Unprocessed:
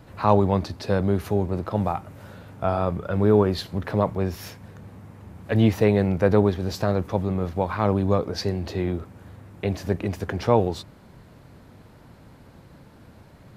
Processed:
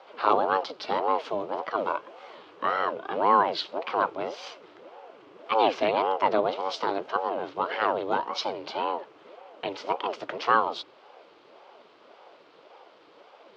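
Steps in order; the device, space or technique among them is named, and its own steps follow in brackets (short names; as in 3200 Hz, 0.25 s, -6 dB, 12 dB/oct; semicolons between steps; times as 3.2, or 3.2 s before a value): voice changer toy (ring modulator with a swept carrier 430 Hz, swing 55%, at 1.8 Hz; speaker cabinet 580–5000 Hz, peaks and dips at 750 Hz -4 dB, 1800 Hz -6 dB, 3100 Hz +5 dB); gain +4 dB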